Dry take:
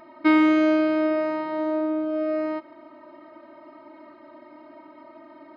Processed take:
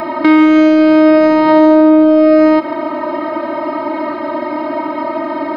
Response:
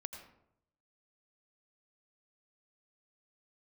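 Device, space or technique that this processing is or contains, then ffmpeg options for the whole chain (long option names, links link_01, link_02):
mastering chain: -filter_complex "[0:a]equalizer=frequency=880:width_type=o:width=0.77:gain=2,acrossover=split=390|3100[link_01][link_02][link_03];[link_01]acompressor=threshold=-27dB:ratio=4[link_04];[link_02]acompressor=threshold=-32dB:ratio=4[link_05];[link_03]acompressor=threshold=-51dB:ratio=4[link_06];[link_04][link_05][link_06]amix=inputs=3:normalize=0,acompressor=threshold=-26dB:ratio=6,asoftclip=type=tanh:threshold=-19dB,alimiter=level_in=28dB:limit=-1dB:release=50:level=0:latency=1,volume=-1dB"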